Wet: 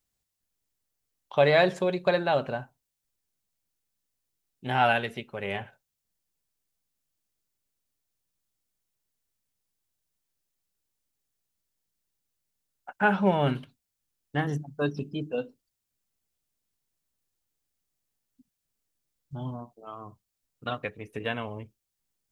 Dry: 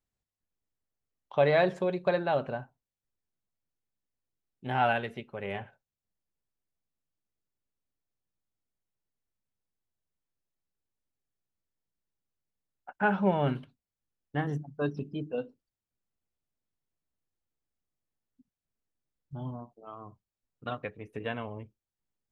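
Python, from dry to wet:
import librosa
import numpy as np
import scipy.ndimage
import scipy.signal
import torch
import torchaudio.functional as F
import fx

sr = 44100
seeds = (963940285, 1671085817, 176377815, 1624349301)

y = fx.high_shelf(x, sr, hz=3100.0, db=10.0)
y = F.gain(torch.from_numpy(y), 2.5).numpy()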